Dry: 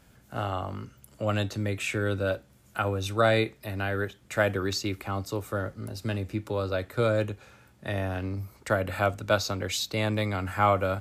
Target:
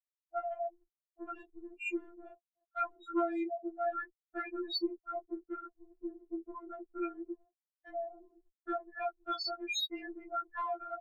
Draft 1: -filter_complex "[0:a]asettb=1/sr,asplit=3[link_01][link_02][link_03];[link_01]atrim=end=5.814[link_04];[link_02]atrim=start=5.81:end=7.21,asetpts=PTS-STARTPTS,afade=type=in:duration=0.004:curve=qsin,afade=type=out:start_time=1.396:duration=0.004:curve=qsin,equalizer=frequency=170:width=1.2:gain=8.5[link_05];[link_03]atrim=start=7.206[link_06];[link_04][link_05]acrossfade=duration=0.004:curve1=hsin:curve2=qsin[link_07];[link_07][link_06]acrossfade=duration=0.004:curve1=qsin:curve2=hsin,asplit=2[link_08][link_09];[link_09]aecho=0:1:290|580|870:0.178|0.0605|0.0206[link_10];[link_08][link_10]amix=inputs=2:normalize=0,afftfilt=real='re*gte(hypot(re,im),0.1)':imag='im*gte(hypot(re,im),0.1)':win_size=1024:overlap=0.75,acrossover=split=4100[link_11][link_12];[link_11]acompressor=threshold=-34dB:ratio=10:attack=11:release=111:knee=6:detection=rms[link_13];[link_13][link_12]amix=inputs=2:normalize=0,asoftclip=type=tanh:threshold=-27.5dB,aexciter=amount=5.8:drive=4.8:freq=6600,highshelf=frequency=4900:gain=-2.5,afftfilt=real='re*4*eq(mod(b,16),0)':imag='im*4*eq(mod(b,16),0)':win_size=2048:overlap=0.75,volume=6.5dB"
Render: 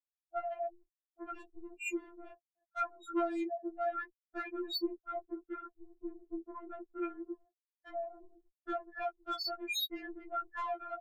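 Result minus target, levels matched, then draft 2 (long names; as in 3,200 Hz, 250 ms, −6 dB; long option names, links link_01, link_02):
soft clipping: distortion +15 dB
-filter_complex "[0:a]asettb=1/sr,asplit=3[link_01][link_02][link_03];[link_01]atrim=end=5.814[link_04];[link_02]atrim=start=5.81:end=7.21,asetpts=PTS-STARTPTS,afade=type=in:duration=0.004:curve=qsin,afade=type=out:start_time=1.396:duration=0.004:curve=qsin,equalizer=frequency=170:width=1.2:gain=8.5[link_05];[link_03]atrim=start=7.206[link_06];[link_04][link_05]acrossfade=duration=0.004:curve1=hsin:curve2=qsin[link_07];[link_07][link_06]acrossfade=duration=0.004:curve1=qsin:curve2=hsin,asplit=2[link_08][link_09];[link_09]aecho=0:1:290|580|870:0.178|0.0605|0.0206[link_10];[link_08][link_10]amix=inputs=2:normalize=0,afftfilt=real='re*gte(hypot(re,im),0.1)':imag='im*gte(hypot(re,im),0.1)':win_size=1024:overlap=0.75,acrossover=split=4100[link_11][link_12];[link_11]acompressor=threshold=-34dB:ratio=10:attack=11:release=111:knee=6:detection=rms[link_13];[link_13][link_12]amix=inputs=2:normalize=0,asoftclip=type=tanh:threshold=-19dB,aexciter=amount=5.8:drive=4.8:freq=6600,highshelf=frequency=4900:gain=-2.5,afftfilt=real='re*4*eq(mod(b,16),0)':imag='im*4*eq(mod(b,16),0)':win_size=2048:overlap=0.75,volume=6.5dB"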